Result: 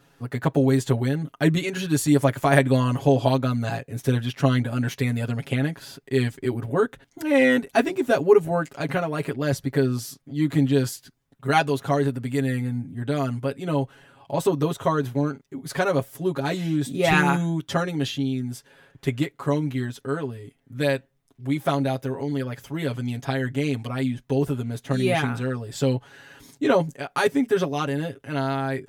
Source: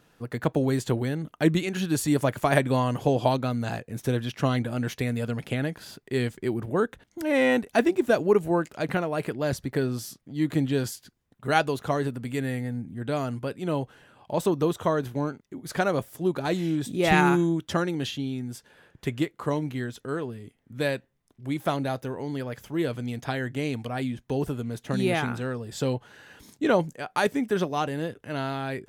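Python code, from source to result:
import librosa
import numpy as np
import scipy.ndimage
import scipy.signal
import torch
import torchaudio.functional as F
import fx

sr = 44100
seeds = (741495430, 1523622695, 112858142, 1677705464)

y = x + 0.93 * np.pad(x, (int(7.3 * sr / 1000.0), 0))[:len(x)]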